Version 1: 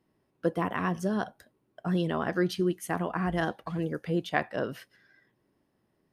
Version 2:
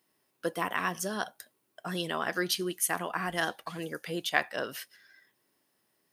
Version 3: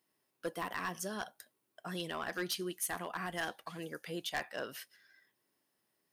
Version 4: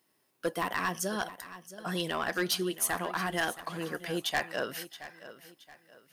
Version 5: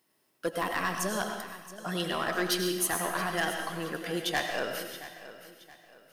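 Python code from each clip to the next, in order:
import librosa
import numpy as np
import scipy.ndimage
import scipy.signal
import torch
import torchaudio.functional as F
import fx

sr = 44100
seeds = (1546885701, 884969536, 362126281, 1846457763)

y1 = fx.tilt_eq(x, sr, slope=4.0)
y2 = np.clip(y1, -10.0 ** (-23.5 / 20.0), 10.0 ** (-23.5 / 20.0))
y2 = y2 * 10.0 ** (-6.0 / 20.0)
y3 = fx.echo_feedback(y2, sr, ms=673, feedback_pct=35, wet_db=-15)
y3 = y3 * 10.0 ** (7.0 / 20.0)
y4 = fx.rev_freeverb(y3, sr, rt60_s=0.88, hf_ratio=1.0, predelay_ms=60, drr_db=4.0)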